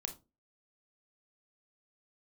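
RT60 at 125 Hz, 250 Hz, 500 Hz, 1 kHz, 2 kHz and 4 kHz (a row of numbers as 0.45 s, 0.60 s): 0.35 s, 0.40 s, 0.30 s, 0.25 s, 0.20 s, 0.20 s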